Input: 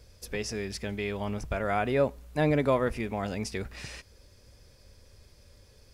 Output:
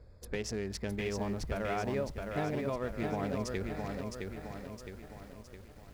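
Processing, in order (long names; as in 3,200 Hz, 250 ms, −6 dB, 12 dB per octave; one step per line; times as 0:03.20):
adaptive Wiener filter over 15 samples
downward compressor 10 to 1, threshold −31 dBFS, peak gain reduction 11.5 dB
feedback echo at a low word length 663 ms, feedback 55%, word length 10 bits, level −4 dB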